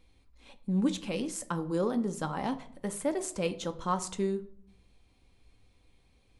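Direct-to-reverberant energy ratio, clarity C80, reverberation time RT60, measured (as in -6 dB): 8.0 dB, 19.0 dB, 0.65 s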